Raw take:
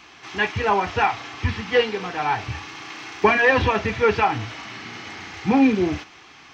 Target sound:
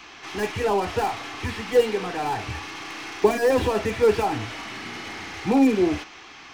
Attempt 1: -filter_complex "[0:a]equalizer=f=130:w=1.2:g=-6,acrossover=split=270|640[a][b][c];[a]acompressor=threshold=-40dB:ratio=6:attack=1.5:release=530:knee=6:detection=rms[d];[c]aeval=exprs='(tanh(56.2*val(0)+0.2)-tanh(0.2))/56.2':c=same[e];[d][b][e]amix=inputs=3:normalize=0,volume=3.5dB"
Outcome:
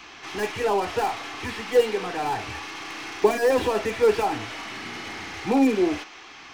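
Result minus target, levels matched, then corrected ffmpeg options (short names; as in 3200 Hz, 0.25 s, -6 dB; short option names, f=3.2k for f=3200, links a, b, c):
compressor: peak gain reduction +9.5 dB
-filter_complex "[0:a]equalizer=f=130:w=1.2:g=-6,acrossover=split=270|640[a][b][c];[a]acompressor=threshold=-28.5dB:ratio=6:attack=1.5:release=530:knee=6:detection=rms[d];[c]aeval=exprs='(tanh(56.2*val(0)+0.2)-tanh(0.2))/56.2':c=same[e];[d][b][e]amix=inputs=3:normalize=0,volume=3.5dB"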